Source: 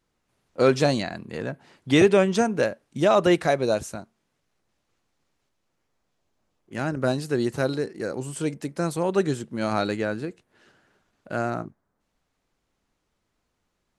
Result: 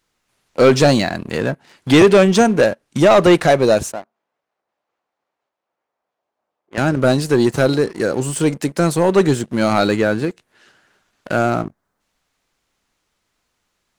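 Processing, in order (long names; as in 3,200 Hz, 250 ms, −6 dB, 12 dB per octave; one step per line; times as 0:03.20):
0:03.92–0:06.78: resonant band-pass 690 Hz, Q 1.3
leveller curve on the samples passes 2
one half of a high-frequency compander encoder only
level +3.5 dB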